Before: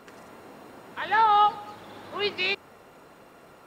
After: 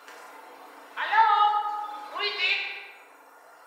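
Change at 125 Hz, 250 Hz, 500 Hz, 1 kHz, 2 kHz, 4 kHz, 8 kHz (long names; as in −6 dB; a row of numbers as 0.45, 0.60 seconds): below −25 dB, below −10 dB, −6.5 dB, 0.0 dB, +2.5 dB, +2.0 dB, can't be measured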